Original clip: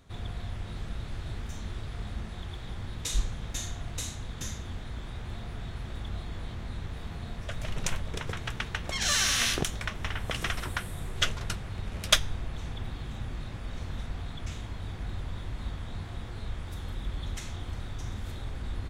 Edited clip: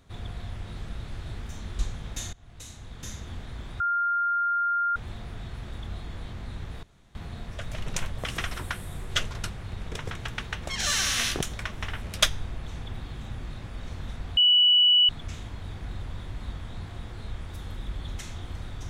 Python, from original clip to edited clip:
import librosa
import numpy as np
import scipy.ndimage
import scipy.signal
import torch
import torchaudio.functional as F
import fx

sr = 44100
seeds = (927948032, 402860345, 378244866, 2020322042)

y = fx.edit(x, sr, fx.cut(start_s=1.79, length_s=1.38),
    fx.fade_in_from(start_s=3.71, length_s=0.97, floor_db=-21.5),
    fx.insert_tone(at_s=5.18, length_s=1.16, hz=1400.0, db=-22.5),
    fx.insert_room_tone(at_s=7.05, length_s=0.32),
    fx.move(start_s=10.24, length_s=1.68, to_s=8.08),
    fx.insert_tone(at_s=14.27, length_s=0.72, hz=2950.0, db=-15.5), tone=tone)